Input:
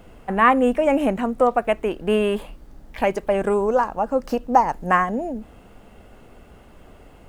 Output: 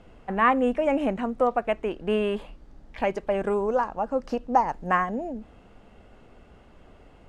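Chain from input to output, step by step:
low-pass filter 6,200 Hz 12 dB per octave
level −5 dB

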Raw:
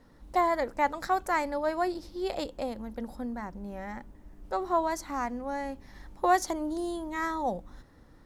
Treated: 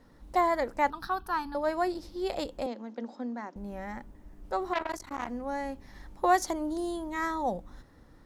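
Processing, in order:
0:00.90–0:01.55: phaser with its sweep stopped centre 2,100 Hz, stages 6
0:02.66–0:03.56: Chebyshev band-pass filter 230–6,700 Hz, order 4
0:04.73–0:05.29: saturating transformer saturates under 1,700 Hz

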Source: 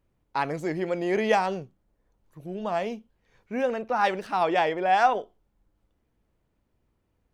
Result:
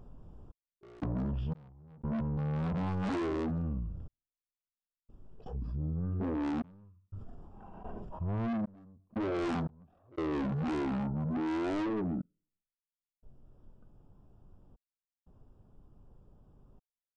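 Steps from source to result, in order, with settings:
adaptive Wiener filter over 9 samples
noise gate with hold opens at −54 dBFS
speech leveller within 4 dB 2 s
soft clipping −31.5 dBFS, distortion −6 dB
gate pattern "x.x.xxxx..xxx.xx" 69 BPM −60 dB
wrong playback speed 78 rpm record played at 33 rpm
envelope flattener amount 70%

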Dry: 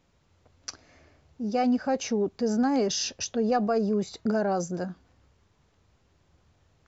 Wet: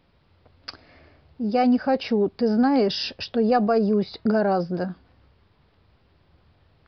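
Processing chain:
downsampling to 11,025 Hz
level +5 dB

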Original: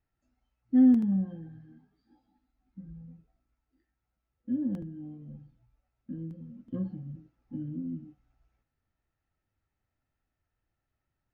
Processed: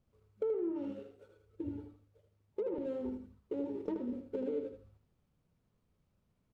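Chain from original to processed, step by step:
running median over 41 samples
treble cut that deepens with the level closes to 940 Hz, closed at −26.5 dBFS
downward compressor 8 to 1, threshold −41 dBFS, peak gain reduction 22.5 dB
on a send: repeating echo 136 ms, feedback 25%, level −7 dB
on the sum: wrong playback speed 45 rpm record played at 78 rpm
level +7 dB

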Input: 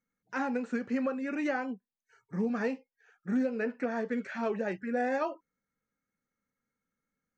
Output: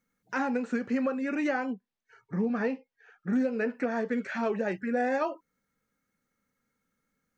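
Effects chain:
in parallel at +2.5 dB: downward compressor, threshold −41 dBFS, peak gain reduction 14.5 dB
0:01.73–0:03.33: on the sum: high-frequency loss of the air 130 metres

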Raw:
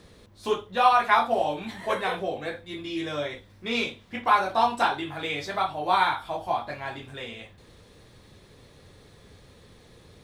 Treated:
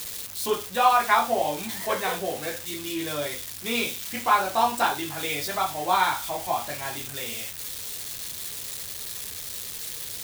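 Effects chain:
spike at every zero crossing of −24 dBFS

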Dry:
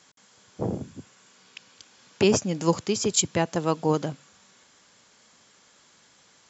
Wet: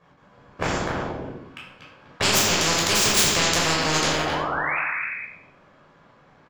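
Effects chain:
low-pass that shuts in the quiet parts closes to 1,200 Hz, open at −21.5 dBFS
brickwall limiter −14 dBFS, peak gain reduction 7.5 dB
power curve on the samples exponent 1.4
pitch-shifted copies added −12 semitones −10 dB
sound drawn into the spectrogram rise, 0:03.71–0:04.78, 230–2,600 Hz −34 dBFS
far-end echo of a speakerphone 250 ms, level −7 dB
convolution reverb RT60 0.70 s, pre-delay 12 ms, DRR −4 dB
every bin compressed towards the loudest bin 4 to 1
level +4.5 dB

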